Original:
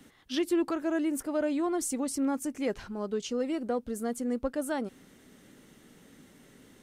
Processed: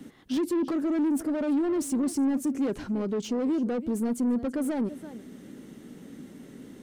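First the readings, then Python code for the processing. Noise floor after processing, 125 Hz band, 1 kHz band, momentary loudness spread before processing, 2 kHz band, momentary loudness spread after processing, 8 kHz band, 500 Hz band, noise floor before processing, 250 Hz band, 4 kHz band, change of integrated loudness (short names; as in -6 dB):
-49 dBFS, n/a, -1.5 dB, 6 LU, -3.0 dB, 19 LU, -2.0 dB, +0.5 dB, -58 dBFS, +5.0 dB, -3.0 dB, +3.5 dB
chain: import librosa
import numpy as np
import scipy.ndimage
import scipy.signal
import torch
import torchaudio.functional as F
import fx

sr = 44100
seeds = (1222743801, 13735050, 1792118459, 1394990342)

y = x + 10.0 ** (-20.0 / 20.0) * np.pad(x, (int(333 * sr / 1000.0), 0))[:len(x)]
y = 10.0 ** (-34.5 / 20.0) * np.tanh(y / 10.0 ** (-34.5 / 20.0))
y = fx.peak_eq(y, sr, hz=250.0, db=11.5, octaves=2.1)
y = F.gain(torch.from_numpy(y), 1.5).numpy()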